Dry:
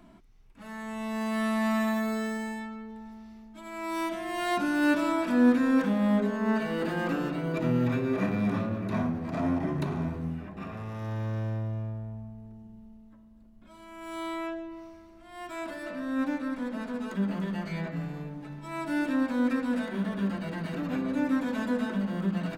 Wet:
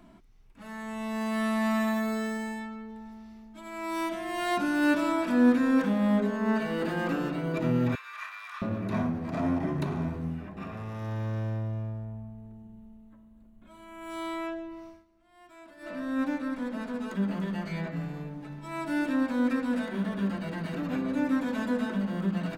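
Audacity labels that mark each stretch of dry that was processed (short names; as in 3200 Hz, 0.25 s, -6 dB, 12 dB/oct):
7.950000	8.620000	Chebyshev high-pass 1100 Hz, order 4
12.040000	14.100000	bell 5100 Hz -11.5 dB 0.38 oct
14.890000	15.930000	dip -14 dB, fades 0.16 s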